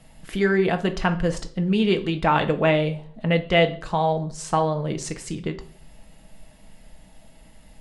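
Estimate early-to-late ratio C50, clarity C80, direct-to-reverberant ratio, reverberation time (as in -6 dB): 15.0 dB, 19.5 dB, 5.0 dB, 0.50 s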